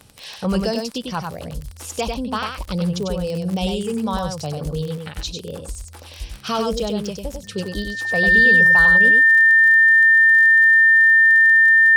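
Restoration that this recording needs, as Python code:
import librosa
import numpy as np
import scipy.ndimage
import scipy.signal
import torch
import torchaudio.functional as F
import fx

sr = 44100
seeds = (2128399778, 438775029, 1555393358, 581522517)

y = fx.fix_declick_ar(x, sr, threshold=6.5)
y = fx.notch(y, sr, hz=1800.0, q=30.0)
y = fx.fix_echo_inverse(y, sr, delay_ms=97, level_db=-4.5)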